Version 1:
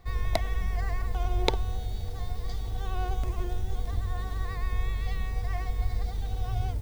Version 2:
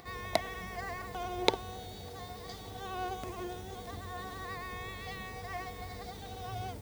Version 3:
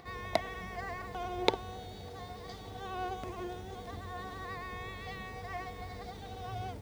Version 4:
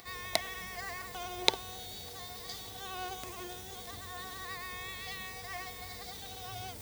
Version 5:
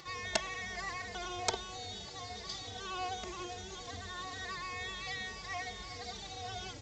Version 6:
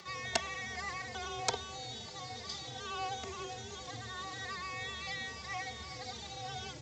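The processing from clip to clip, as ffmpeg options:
-af "highpass=180,acompressor=mode=upward:threshold=0.00447:ratio=2.5"
-af "highshelf=f=6200:g=-10"
-af "areverse,acompressor=mode=upward:threshold=0.00891:ratio=2.5,areverse,crystalizer=i=8.5:c=0,volume=0.473"
-filter_complex "[0:a]aresample=16000,aeval=exprs='(mod(7.94*val(0)+1,2)-1)/7.94':c=same,aresample=44100,asplit=2[s0][s1];[s1]adelay=3,afreqshift=-2.4[s2];[s0][s2]amix=inputs=2:normalize=1,volume=1.68"
-af "afreqshift=26"

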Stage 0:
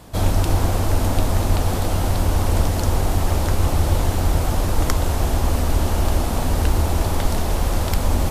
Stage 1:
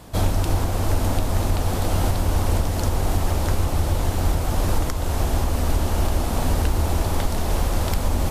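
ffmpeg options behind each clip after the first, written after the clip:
-af "alimiter=limit=0.316:level=0:latency=1:release=391"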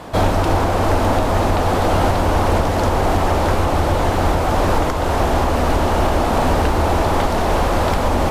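-filter_complex "[0:a]asplit=2[s0][s1];[s1]highpass=f=720:p=1,volume=7.08,asoftclip=type=tanh:threshold=0.316[s2];[s0][s2]amix=inputs=2:normalize=0,lowpass=f=1100:p=1,volume=0.501,volume=2"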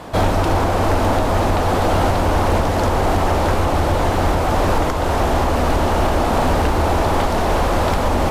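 -af "asoftclip=type=hard:threshold=0.316"

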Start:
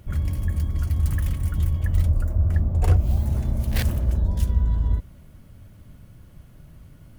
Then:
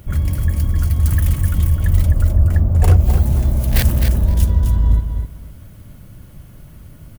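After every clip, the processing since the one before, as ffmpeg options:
-filter_complex "[0:a]highshelf=f=10000:g=8.5,asplit=2[s0][s1];[s1]aecho=0:1:258|516|774:0.447|0.0804|0.0145[s2];[s0][s2]amix=inputs=2:normalize=0,volume=2.11"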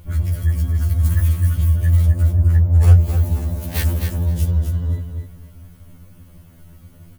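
-af "afftfilt=real='re*2*eq(mod(b,4),0)':imag='im*2*eq(mod(b,4),0)':win_size=2048:overlap=0.75,volume=0.841"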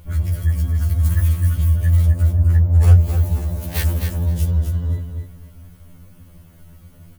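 -af "bandreject=f=50:t=h:w=6,bandreject=f=100:t=h:w=6,bandreject=f=150:t=h:w=6,bandreject=f=200:t=h:w=6,bandreject=f=250:t=h:w=6,bandreject=f=300:t=h:w=6,bandreject=f=350:t=h:w=6"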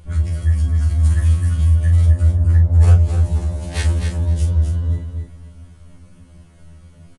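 -filter_complex "[0:a]asplit=2[s0][s1];[s1]adelay=38,volume=0.473[s2];[s0][s2]amix=inputs=2:normalize=0,aresample=22050,aresample=44100"

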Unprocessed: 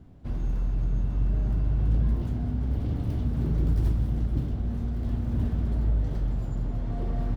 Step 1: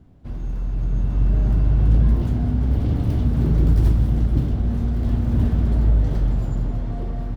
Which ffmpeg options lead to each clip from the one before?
-af "dynaudnorm=f=210:g=9:m=2.51"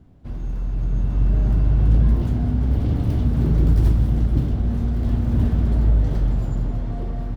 -af anull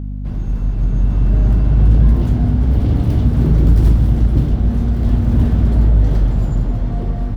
-filter_complex "[0:a]asplit=2[s0][s1];[s1]volume=4.22,asoftclip=hard,volume=0.237,volume=0.398[s2];[s0][s2]amix=inputs=2:normalize=0,aeval=exprs='val(0)+0.0562*(sin(2*PI*50*n/s)+sin(2*PI*2*50*n/s)/2+sin(2*PI*3*50*n/s)/3+sin(2*PI*4*50*n/s)/4+sin(2*PI*5*50*n/s)/5)':c=same,volume=1.33"

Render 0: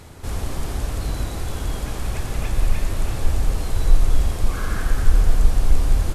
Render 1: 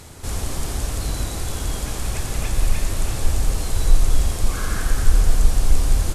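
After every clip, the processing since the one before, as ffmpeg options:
-af "equalizer=f=8100:w=0.53:g=8"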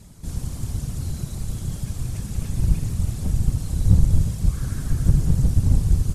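-af "bass=f=250:g=13,treble=f=4000:g=6,afftfilt=real='hypot(re,im)*cos(2*PI*random(0))':imag='hypot(re,im)*sin(2*PI*random(1))':win_size=512:overlap=0.75,volume=0.376"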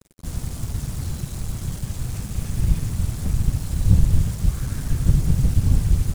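-af "acrusher=bits=5:mix=0:aa=0.5"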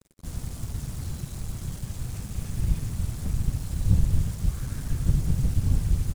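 -af "aecho=1:1:119:0.1,volume=0.531"

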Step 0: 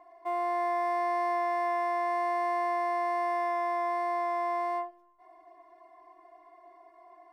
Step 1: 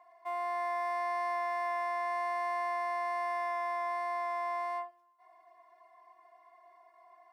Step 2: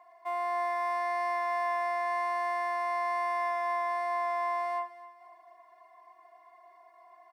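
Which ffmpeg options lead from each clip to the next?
-af "highpass=840,volume=0.891"
-af "aecho=1:1:260|520|780|1040:0.141|0.0622|0.0273|0.012,volume=1.41"

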